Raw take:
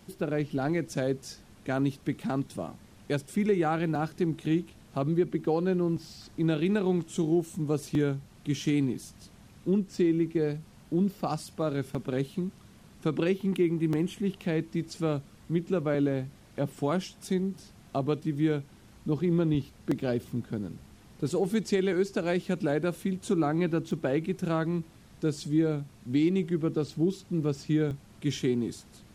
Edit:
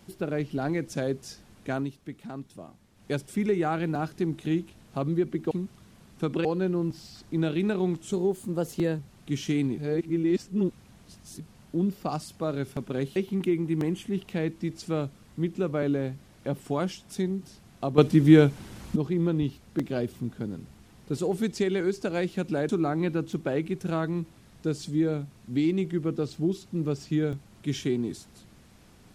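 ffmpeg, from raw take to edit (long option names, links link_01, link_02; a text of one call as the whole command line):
ffmpeg -i in.wav -filter_complex "[0:a]asplit=13[link_01][link_02][link_03][link_04][link_05][link_06][link_07][link_08][link_09][link_10][link_11][link_12][link_13];[link_01]atrim=end=1.91,asetpts=PTS-STARTPTS,afade=type=out:start_time=1.73:duration=0.18:silence=0.375837[link_14];[link_02]atrim=start=1.91:end=2.94,asetpts=PTS-STARTPTS,volume=-8.5dB[link_15];[link_03]atrim=start=2.94:end=5.512,asetpts=PTS-STARTPTS,afade=type=in:duration=0.18:silence=0.375837[link_16];[link_04]atrim=start=12.338:end=13.282[link_17];[link_05]atrim=start=5.508:end=7.194[link_18];[link_06]atrim=start=7.19:end=8.17,asetpts=PTS-STARTPTS,asetrate=50274,aresample=44100[link_19];[link_07]atrim=start=8.166:end=8.962[link_20];[link_08]atrim=start=8.958:end=10.582,asetpts=PTS-STARTPTS,areverse[link_21];[link_09]atrim=start=10.578:end=12.342[link_22];[link_10]atrim=start=13.278:end=18.102[link_23];[link_11]atrim=start=18.098:end=19.082,asetpts=PTS-STARTPTS,volume=11dB[link_24];[link_12]atrim=start=19.078:end=22.812[link_25];[link_13]atrim=start=23.268[link_26];[link_14][link_15][link_16]concat=n=3:v=0:a=1[link_27];[link_27][link_17]acrossfade=duration=0.004:curve1=hsin:curve2=hsin[link_28];[link_28][link_18]acrossfade=duration=0.004:curve1=hsin:curve2=hsin[link_29];[link_29][link_19]acrossfade=duration=0.004:curve1=hsin:curve2=hsin[link_30];[link_30][link_20]acrossfade=duration=0.004:curve1=hsin:curve2=hsin[link_31];[link_31][link_21]acrossfade=duration=0.004:curve1=hsin:curve2=hsin[link_32];[link_32][link_22]acrossfade=duration=0.004:curve1=hsin:curve2=hsin[link_33];[link_33][link_23]acrossfade=duration=0.004:curve1=hsin:curve2=hsin[link_34];[link_34][link_24]acrossfade=duration=0.004:curve1=hsin:curve2=hsin[link_35];[link_35][link_25]acrossfade=duration=0.004:curve1=hsin:curve2=hsin[link_36];[link_36][link_26]acrossfade=duration=0.004:curve1=hsin:curve2=hsin" out.wav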